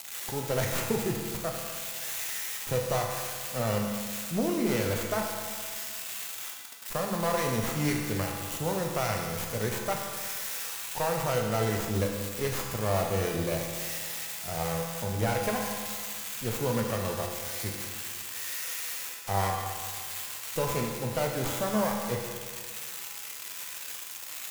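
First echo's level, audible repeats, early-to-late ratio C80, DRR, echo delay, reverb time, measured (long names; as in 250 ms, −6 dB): no echo audible, no echo audible, 4.0 dB, −0.5 dB, no echo audible, 1.8 s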